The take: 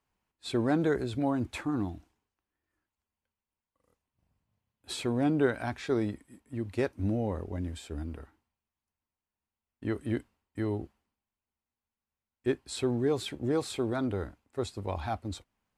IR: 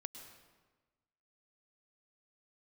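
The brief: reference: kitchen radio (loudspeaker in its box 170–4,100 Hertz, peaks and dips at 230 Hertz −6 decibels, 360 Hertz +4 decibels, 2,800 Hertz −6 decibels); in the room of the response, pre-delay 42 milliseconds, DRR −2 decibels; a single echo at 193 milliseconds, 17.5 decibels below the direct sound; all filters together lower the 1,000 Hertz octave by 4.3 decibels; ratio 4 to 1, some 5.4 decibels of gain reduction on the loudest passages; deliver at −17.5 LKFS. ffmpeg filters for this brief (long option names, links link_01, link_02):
-filter_complex "[0:a]equalizer=frequency=1000:width_type=o:gain=-6.5,acompressor=threshold=-29dB:ratio=4,aecho=1:1:193:0.133,asplit=2[link_01][link_02];[1:a]atrim=start_sample=2205,adelay=42[link_03];[link_02][link_03]afir=irnorm=-1:irlink=0,volume=5.5dB[link_04];[link_01][link_04]amix=inputs=2:normalize=0,highpass=170,equalizer=frequency=230:width_type=q:width=4:gain=-6,equalizer=frequency=360:width_type=q:width=4:gain=4,equalizer=frequency=2800:width_type=q:width=4:gain=-6,lowpass=frequency=4100:width=0.5412,lowpass=frequency=4100:width=1.3066,volume=15dB"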